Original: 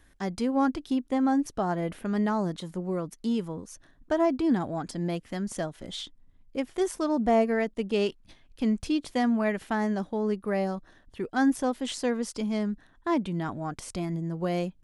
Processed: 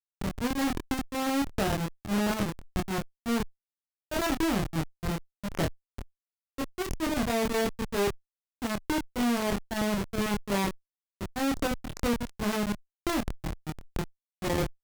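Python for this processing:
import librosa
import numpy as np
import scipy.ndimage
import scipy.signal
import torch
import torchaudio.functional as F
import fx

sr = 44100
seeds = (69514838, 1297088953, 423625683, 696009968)

y = fx.schmitt(x, sr, flips_db=-26.5)
y = fx.doubler(y, sr, ms=25.0, db=-3.5)
y = fx.cheby_harmonics(y, sr, harmonics=(4,), levels_db=(-14,), full_scale_db=-19.0)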